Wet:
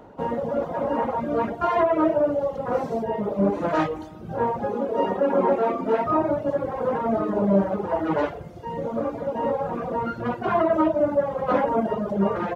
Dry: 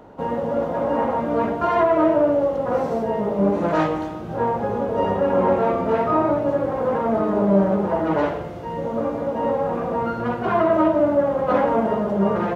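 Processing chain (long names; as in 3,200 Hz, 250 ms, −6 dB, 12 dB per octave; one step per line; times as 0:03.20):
reverb reduction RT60 1.1 s
0:04.66–0:06.04: low shelf with overshoot 170 Hz −10.5 dB, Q 1.5
level −1 dB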